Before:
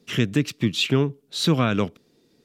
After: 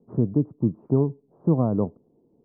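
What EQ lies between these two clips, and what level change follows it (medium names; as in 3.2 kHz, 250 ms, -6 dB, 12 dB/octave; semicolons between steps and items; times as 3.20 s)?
steep low-pass 980 Hz 48 dB/octave; distance through air 180 m; 0.0 dB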